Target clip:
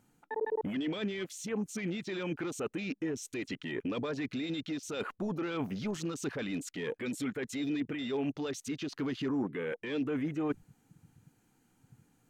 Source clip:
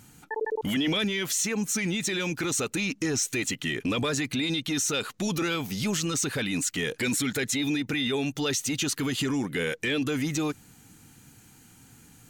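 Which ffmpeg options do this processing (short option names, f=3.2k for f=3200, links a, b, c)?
-af "equalizer=f=68:w=0.35:g=-13.5,areverse,acompressor=threshold=-38dB:ratio=10,areverse,afwtdn=0.00447,tiltshelf=f=1.3k:g=7.5,volume=3dB"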